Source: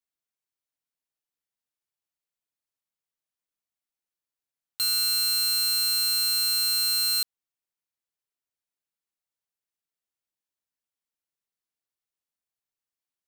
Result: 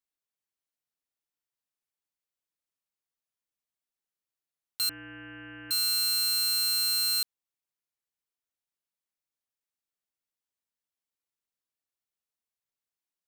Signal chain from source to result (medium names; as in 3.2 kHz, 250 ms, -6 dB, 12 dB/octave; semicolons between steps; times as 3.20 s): 4.89–5.71 s: frequency inversion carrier 3 kHz; trim -2.5 dB